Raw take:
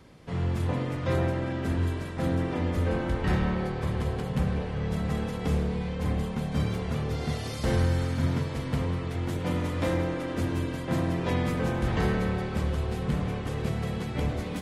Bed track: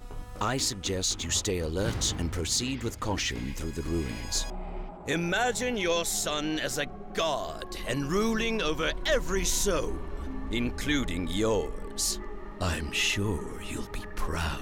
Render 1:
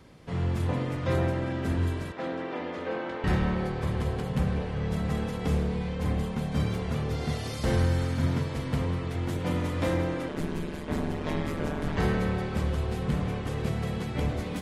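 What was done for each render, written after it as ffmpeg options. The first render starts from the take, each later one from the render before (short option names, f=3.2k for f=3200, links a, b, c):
-filter_complex "[0:a]asettb=1/sr,asplit=3[a][b][c];[a]atrim=end=2.124[d];[b]atrim=start=2.12:end=3.24,asetpts=PTS-STARTPTS,afade=t=in:d=0.004:c=qsin,afade=t=out:st=1.116:d=0.004:c=qsin,highpass=360,lowpass=4k[e];[c]atrim=start=3.236[f];[d][e]acrossfade=d=0.004:c1=hsin:c2=qsin[g];[g][f]acrossfade=d=0.004:c1=qsin:c2=hsin,asettb=1/sr,asplit=3[h][i][j];[h]atrim=end=10.284[k];[i]atrim=start=10.28:end=11.98,asetpts=PTS-STARTPTS,afade=t=in:d=0.004:c=qsin,afade=t=out:st=1.696:d=0.004:c=qsin,aeval=exprs='val(0)*sin(2*PI*76*n/s)':c=same[l];[j]atrim=start=11.976[m];[k][l]acrossfade=d=0.004:c1=hsin:c2=qsin[n];[n][m]acrossfade=d=0.004:c1=qsin:c2=hsin"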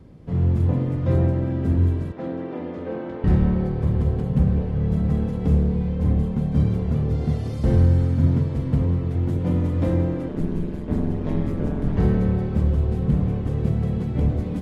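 -af "tiltshelf=f=640:g=9.5"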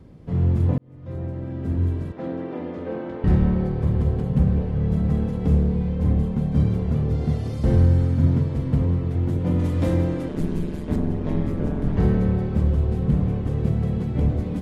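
-filter_complex "[0:a]asettb=1/sr,asplit=3[a][b][c];[a]atrim=end=9.594[d];[b]atrim=start=9.59:end=10.96,asetpts=PTS-STARTPTS,afade=t=in:d=0.004:c=qsin,afade=t=out:st=1.366:d=0.004:c=qsin,highshelf=f=2.7k:g=9[e];[c]atrim=start=10.956[f];[d][e]acrossfade=d=0.004:c1=hsin:c2=qsin[g];[g][f]acrossfade=d=0.004:c1=qsin:c2=hsin,asplit=2[h][i];[h]atrim=end=0.78,asetpts=PTS-STARTPTS,afade=t=out:st=0.776:d=0.004:c=hsin[j];[i]atrim=start=0.78,asetpts=PTS-STARTPTS,afade=t=in:d=1.52[k];[j][k]concat=n=2:v=0:a=1"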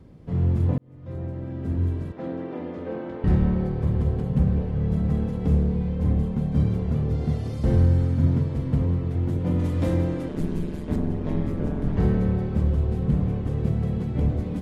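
-af "volume=-2dB"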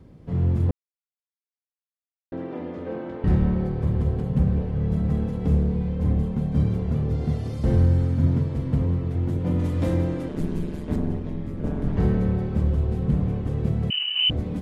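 -filter_complex "[0:a]asettb=1/sr,asplit=3[a][b][c];[a]atrim=end=11.184[d];[b]atrim=start=11.18:end=11.64,asetpts=PTS-STARTPTS,afade=t=in:d=0.004:c=qsin,afade=t=out:st=0.456:d=0.004:c=qsin,acrossover=split=280|620|1800[e][f][g][h];[e]acompressor=threshold=-28dB:ratio=3[i];[f]acompressor=threshold=-43dB:ratio=3[j];[g]acompressor=threshold=-54dB:ratio=3[k];[h]acompressor=threshold=-59dB:ratio=3[l];[i][j][k][l]amix=inputs=4:normalize=0[m];[c]atrim=start=11.636[n];[d][m]acrossfade=d=0.004:c1=hsin:c2=qsin[o];[o][n]acrossfade=d=0.004:c1=qsin:c2=hsin,asettb=1/sr,asplit=3[p][q][r];[p]atrim=end=13.904[s];[q]atrim=start=13.9:end=14.3,asetpts=PTS-STARTPTS,afade=t=in:d=0.004:c=qsin,afade=t=out:st=0.396:d=0.004:c=qsin,lowpass=f=2.6k:t=q:w=0.5098,lowpass=f=2.6k:t=q:w=0.6013,lowpass=f=2.6k:t=q:w=0.9,lowpass=f=2.6k:t=q:w=2.563,afreqshift=-3100[t];[r]atrim=start=14.296[u];[s][t]acrossfade=d=0.004:c1=hsin:c2=qsin[v];[v][u]acrossfade=d=0.004:c1=qsin:c2=hsin,asplit=3[w][x][y];[w]atrim=end=0.71,asetpts=PTS-STARTPTS,afade=t=out:st=0.706:d=0.004:c=hsin[z];[x]atrim=start=0.71:end=2.32,asetpts=PTS-STARTPTS,volume=0[aa];[y]atrim=start=2.32,asetpts=PTS-STARTPTS,afade=t=in:d=0.004:c=hsin[ab];[z][aa][ab]concat=n=3:v=0:a=1"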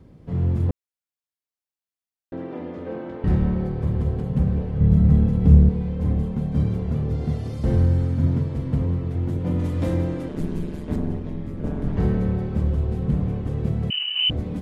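-filter_complex "[0:a]asettb=1/sr,asplit=3[a][b][c];[a]atrim=end=4.804[d];[b]atrim=start=4.8:end=5.69,asetpts=PTS-STARTPTS,afade=t=in:d=0.004:c=qsin,afade=t=out:st=0.886:d=0.004:c=qsin,bass=f=250:g=9,treble=f=4k:g=-1[e];[c]atrim=start=5.686[f];[d][e]acrossfade=d=0.004:c1=hsin:c2=qsin[g];[g][f]acrossfade=d=0.004:c1=qsin:c2=hsin"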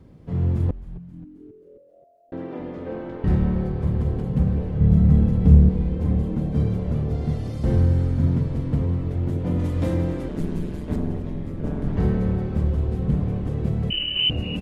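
-filter_complex "[0:a]asplit=7[a][b][c][d][e][f][g];[b]adelay=266,afreqshift=-130,volume=-15dB[h];[c]adelay=532,afreqshift=-260,volume=-19.6dB[i];[d]adelay=798,afreqshift=-390,volume=-24.2dB[j];[e]adelay=1064,afreqshift=-520,volume=-28.7dB[k];[f]adelay=1330,afreqshift=-650,volume=-33.3dB[l];[g]adelay=1596,afreqshift=-780,volume=-37.9dB[m];[a][h][i][j][k][l][m]amix=inputs=7:normalize=0"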